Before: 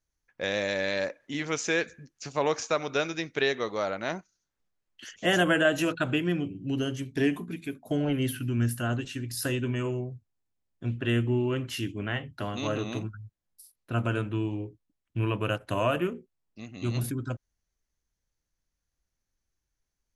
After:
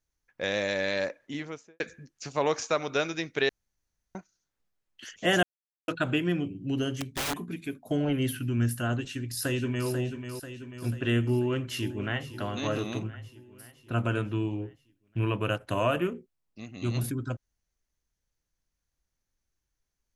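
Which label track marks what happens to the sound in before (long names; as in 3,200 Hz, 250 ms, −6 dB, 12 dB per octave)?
1.170000	1.800000	fade out and dull
3.490000	4.150000	fill with room tone
5.430000	5.880000	silence
6.990000	7.470000	wrap-around overflow gain 25.5 dB
9.060000	9.900000	delay throw 490 ms, feedback 60%, level −8 dB
11.310000	12.330000	delay throw 510 ms, feedback 60%, level −14 dB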